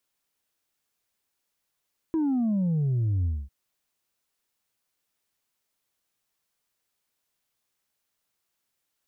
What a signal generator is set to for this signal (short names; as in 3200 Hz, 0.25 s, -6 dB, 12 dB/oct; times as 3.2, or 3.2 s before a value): sub drop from 330 Hz, over 1.35 s, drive 2 dB, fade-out 0.24 s, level -22.5 dB